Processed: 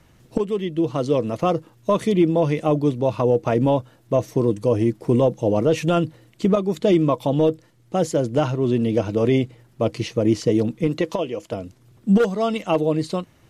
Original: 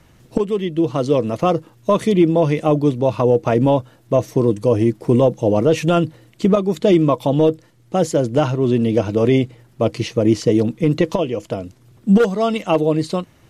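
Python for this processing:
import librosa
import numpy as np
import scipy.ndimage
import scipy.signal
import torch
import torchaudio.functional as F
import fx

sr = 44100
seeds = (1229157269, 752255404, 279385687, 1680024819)

y = fx.low_shelf(x, sr, hz=170.0, db=-10.0, at=(10.87, 11.53))
y = F.gain(torch.from_numpy(y), -3.5).numpy()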